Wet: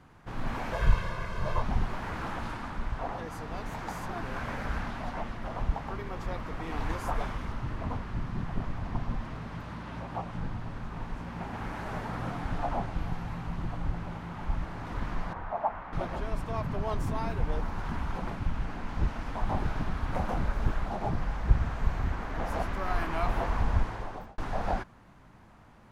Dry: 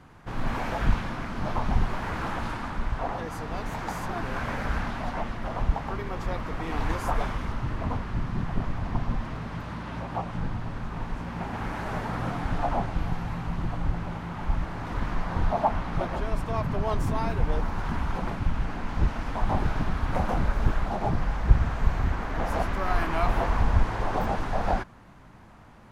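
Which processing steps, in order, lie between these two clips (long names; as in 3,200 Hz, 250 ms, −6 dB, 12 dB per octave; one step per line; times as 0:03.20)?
0:00.73–0:01.62: comb filter 1.9 ms, depth 89%
0:15.33–0:15.93: three-way crossover with the lows and the highs turned down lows −12 dB, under 500 Hz, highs −19 dB, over 2,300 Hz
0:23.77–0:24.38: fade out
level −4.5 dB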